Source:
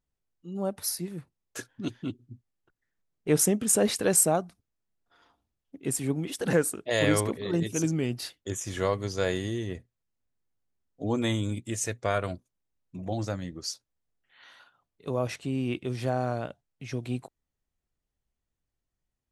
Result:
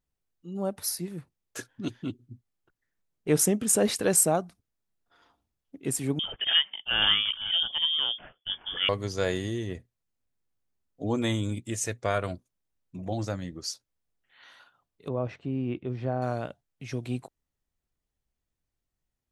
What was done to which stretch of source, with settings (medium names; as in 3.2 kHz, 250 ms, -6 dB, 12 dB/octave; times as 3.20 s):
6.19–8.89 s: frequency inversion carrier 3.4 kHz
15.08–16.22 s: tape spacing loss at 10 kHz 33 dB